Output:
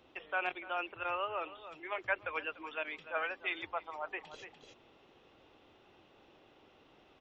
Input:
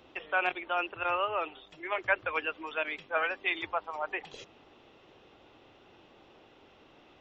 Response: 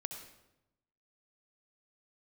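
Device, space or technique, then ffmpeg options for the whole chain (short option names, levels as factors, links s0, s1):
ducked delay: -filter_complex "[0:a]asplit=3[s0][s1][s2];[s1]adelay=294,volume=0.562[s3];[s2]apad=whole_len=330842[s4];[s3][s4]sidechaincompress=threshold=0.00631:ratio=4:attack=12:release=443[s5];[s0][s5]amix=inputs=2:normalize=0,volume=0.501"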